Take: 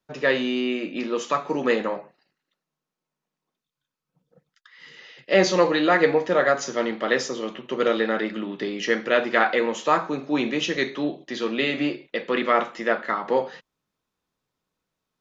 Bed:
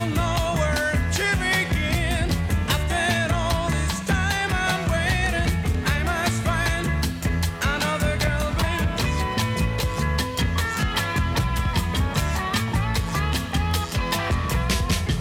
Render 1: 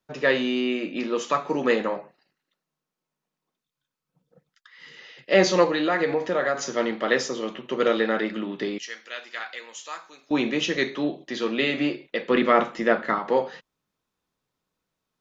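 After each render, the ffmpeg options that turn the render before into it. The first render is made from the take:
-filter_complex "[0:a]asettb=1/sr,asplit=3[a][b][c];[a]atrim=end=5.644[d];[b]atrim=start=5.64:end=6.61,asetpts=PTS-STARTPTS,afade=t=in:d=0.004:c=qsin,afade=t=out:st=0.966:d=0.004:c=qsin,acompressor=threshold=-22dB:ratio=2:attack=3.2:release=140:knee=1:detection=peak[e];[c]atrim=start=6.606[f];[d][e]acrossfade=d=0.004:c1=hsin:c2=qsin[g];[g][f]acrossfade=d=0.004:c1=qsin:c2=hsin,asettb=1/sr,asplit=3[h][i][j];[h]atrim=end=8.784[k];[i]atrim=start=8.78:end=10.31,asetpts=PTS-STARTPTS,afade=t=in:d=0.004:c=qsin,afade=t=out:st=1.526:d=0.004:c=qsin,aderivative[l];[j]atrim=start=10.306[m];[k][l]acrossfade=d=0.004:c1=hsin:c2=qsin[n];[n][m]acrossfade=d=0.004:c1=qsin:c2=hsin,asettb=1/sr,asplit=3[o][p][q];[o]atrim=end=12.304[r];[p]atrim=start=12.3:end=13.19,asetpts=PTS-STARTPTS,afade=t=in:d=0.004:c=qsin,afade=t=out:st=0.886:d=0.004:c=qsin,lowshelf=f=300:g=9.5[s];[q]atrim=start=13.186[t];[r][s]acrossfade=d=0.004:c1=hsin:c2=qsin[u];[u][t]acrossfade=d=0.004:c1=qsin:c2=hsin"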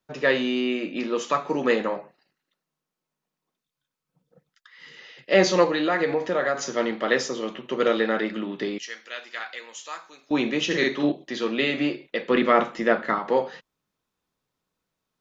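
-filter_complex "[0:a]asettb=1/sr,asplit=3[a][b][c];[a]atrim=end=10.664[d];[b]atrim=start=10.66:end=11.12,asetpts=PTS-STARTPTS,afade=t=in:d=0.004:c=qsin,afade=t=out:st=0.456:d=0.004:c=qsin,asplit=2[e][f];[f]adelay=48,volume=-2dB[g];[e][g]amix=inputs=2:normalize=0,atrim=end_sample=20286[h];[c]atrim=start=11.116[i];[d][h]acrossfade=d=0.004:c1=hsin:c2=qsin[j];[j][i]acrossfade=d=0.004:c1=qsin:c2=hsin"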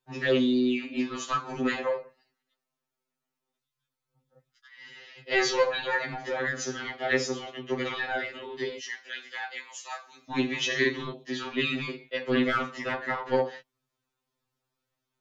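-filter_complex "[0:a]acrossover=split=170|1400[a][b][c];[b]asoftclip=type=tanh:threshold=-21.5dB[d];[a][d][c]amix=inputs=3:normalize=0,afftfilt=real='re*2.45*eq(mod(b,6),0)':imag='im*2.45*eq(mod(b,6),0)':win_size=2048:overlap=0.75"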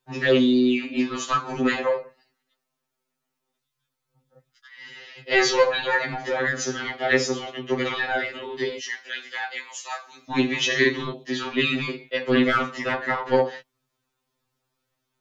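-af "volume=5.5dB"

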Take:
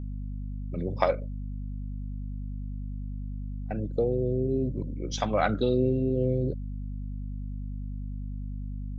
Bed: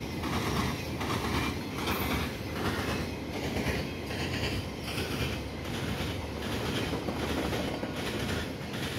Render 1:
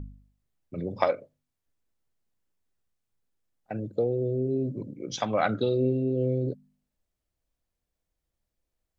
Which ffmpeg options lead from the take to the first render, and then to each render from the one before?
-af "bandreject=f=50:t=h:w=4,bandreject=f=100:t=h:w=4,bandreject=f=150:t=h:w=4,bandreject=f=200:t=h:w=4,bandreject=f=250:t=h:w=4"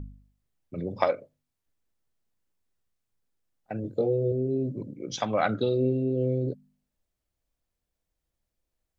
-filter_complex "[0:a]asettb=1/sr,asplit=3[a][b][c];[a]atrim=end=3.824[d];[b]atrim=start=3.82:end=4.32,asetpts=PTS-STARTPTS,afade=t=in:d=0.004:c=qsin,afade=t=out:st=0.496:d=0.004:c=qsin,asplit=2[e][f];[f]adelay=22,volume=-2.5dB[g];[e][g]amix=inputs=2:normalize=0,atrim=end_sample=22050[h];[c]atrim=start=4.316[i];[d][h]acrossfade=d=0.004:c1=hsin:c2=qsin[j];[j][i]acrossfade=d=0.004:c1=qsin:c2=hsin"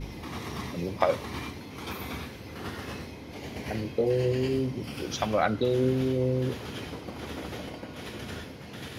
-filter_complex "[1:a]volume=-6dB[a];[0:a][a]amix=inputs=2:normalize=0"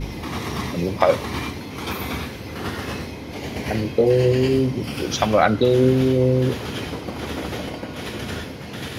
-af "volume=9dB,alimiter=limit=-2dB:level=0:latency=1"

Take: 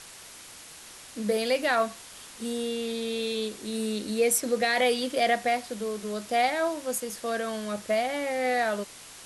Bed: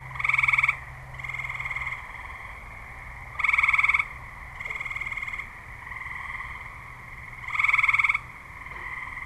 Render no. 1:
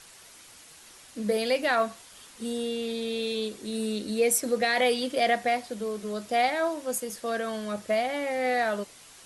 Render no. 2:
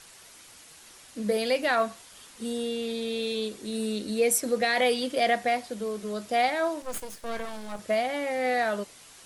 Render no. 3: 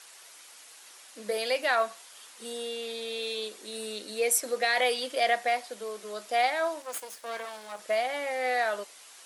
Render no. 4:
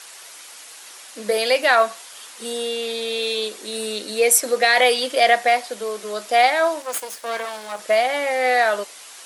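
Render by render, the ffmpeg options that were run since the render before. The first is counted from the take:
-af "afftdn=nr=6:nf=-47"
-filter_complex "[0:a]asettb=1/sr,asplit=3[a][b][c];[a]atrim=end=6.824[d];[b]atrim=start=6.82:end=7.79,asetpts=PTS-STARTPTS,afade=t=in:d=0.004:c=qsin,afade=t=out:st=0.966:d=0.004:c=qsin,aeval=exprs='max(val(0),0)':c=same[e];[c]atrim=start=7.786[f];[d][e]acrossfade=d=0.004:c1=hsin:c2=qsin[g];[g][f]acrossfade=d=0.004:c1=qsin:c2=hsin"
-af "highpass=530"
-af "volume=10dB"

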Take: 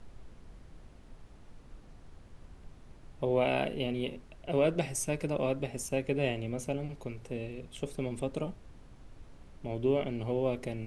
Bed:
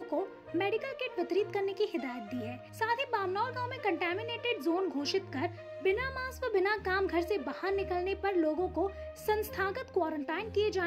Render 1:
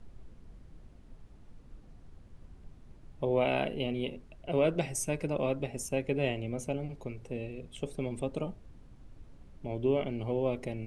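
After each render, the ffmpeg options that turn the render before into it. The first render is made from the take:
-af "afftdn=nr=6:nf=-54"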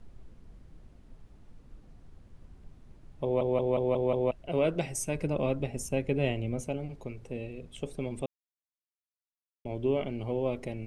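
-filter_complex "[0:a]asettb=1/sr,asplit=3[a][b][c];[a]atrim=end=5.154[d];[b]atrim=start=5.15:end=6.61,asetpts=PTS-STARTPTS,afade=t=in:d=0.004:c=qsin,afade=t=out:st=1.456:d=0.004:c=qsin,lowshelf=f=220:g=6[e];[c]atrim=start=6.606[f];[d][e]acrossfade=d=0.004:c1=hsin:c2=qsin[g];[g][f]acrossfade=d=0.004:c1=qsin:c2=hsin,asplit=9[h][i][j][k][l][m][n][o][p];[h]atrim=end=3.412[q];[i]atrim=start=3.228:end=3.412[r];[j]atrim=start=3.228:end=3.412[s];[k]atrim=start=3.228:end=3.412[t];[l]atrim=start=3.228:end=3.412[u];[m]atrim=start=3.228:end=3.412[v];[n]atrim=start=4.308:end=8.26,asetpts=PTS-STARTPTS,afade=t=out:st=3.948:d=0.004:c=hsin[w];[o]atrim=start=8.26:end=9.65,asetpts=PTS-STARTPTS,volume=0[x];[p]atrim=start=9.65,asetpts=PTS-STARTPTS,afade=t=in:d=0.004:c=hsin[y];[q][r]acrossfade=d=0.004:c1=hsin:c2=hsin[z];[z][s]acrossfade=d=0.004:c1=hsin:c2=hsin[aa];[aa][t]acrossfade=d=0.004:c1=hsin:c2=hsin[ab];[ab][u]acrossfade=d=0.004:c1=hsin:c2=hsin[ac];[ac][v]acrossfade=d=0.004:c1=hsin:c2=hsin[ad];[w][x][y]concat=n=3:v=0:a=1[ae];[ad][ae]acrossfade=d=0.004:c1=hsin:c2=hsin"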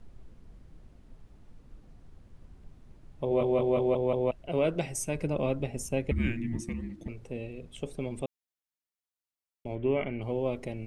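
-filter_complex "[0:a]asettb=1/sr,asplit=3[a][b][c];[a]atrim=end=3.294[d];[b]atrim=start=3.29:end=3.94,asetpts=PTS-STARTPTS,afade=t=in:d=0.004:c=qsin,afade=t=out:st=0.646:d=0.004:c=qsin,asplit=2[e][f];[f]adelay=21,volume=-3dB[g];[e][g]amix=inputs=2:normalize=0,atrim=end_sample=28665[h];[c]atrim=start=3.936[i];[d][h]acrossfade=d=0.004:c1=hsin:c2=qsin[j];[j][i]acrossfade=d=0.004:c1=qsin:c2=hsin,asettb=1/sr,asplit=3[k][l][m];[k]atrim=end=6.114[n];[l]atrim=start=6.11:end=7.08,asetpts=PTS-STARTPTS,afade=t=in:d=0.004:c=qsin,afade=t=out:st=0.966:d=0.004:c=qsin,afreqshift=-350[o];[m]atrim=start=7.076[p];[n][o]acrossfade=d=0.004:c1=hsin:c2=qsin[q];[q][p]acrossfade=d=0.004:c1=qsin:c2=hsin,asettb=1/sr,asplit=3[r][s][t];[r]atrim=end=9.754[u];[s]atrim=start=9.75:end=10.22,asetpts=PTS-STARTPTS,afade=t=in:d=0.004:c=qsin,afade=t=out:st=0.466:d=0.004:c=qsin,lowpass=f=2.1k:t=q:w=2.8[v];[t]atrim=start=10.216[w];[u][v]acrossfade=d=0.004:c1=hsin:c2=qsin[x];[x][w]acrossfade=d=0.004:c1=qsin:c2=hsin"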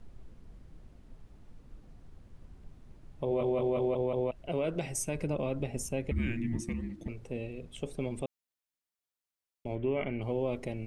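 -af "alimiter=limit=-21.5dB:level=0:latency=1:release=69"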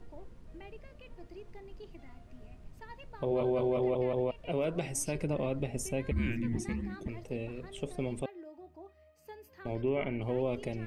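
-filter_complex "[1:a]volume=-19dB[a];[0:a][a]amix=inputs=2:normalize=0"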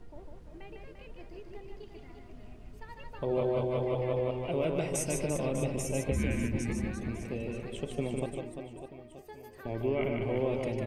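-af "aecho=1:1:150|345|598.5|928|1356:0.631|0.398|0.251|0.158|0.1"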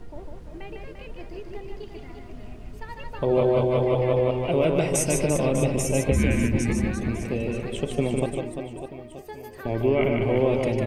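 -af "volume=9dB"

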